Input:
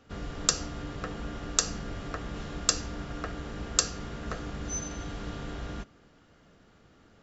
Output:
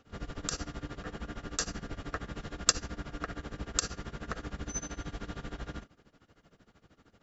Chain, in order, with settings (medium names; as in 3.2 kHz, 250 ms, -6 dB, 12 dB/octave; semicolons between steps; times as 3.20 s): dynamic bell 1.7 kHz, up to +4 dB, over -50 dBFS, Q 2.3; tremolo 13 Hz, depth 88%